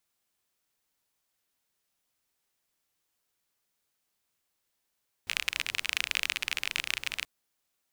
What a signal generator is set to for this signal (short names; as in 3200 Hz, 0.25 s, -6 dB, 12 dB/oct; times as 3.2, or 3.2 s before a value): rain from filtered ticks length 1.98 s, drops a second 33, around 2500 Hz, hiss -21 dB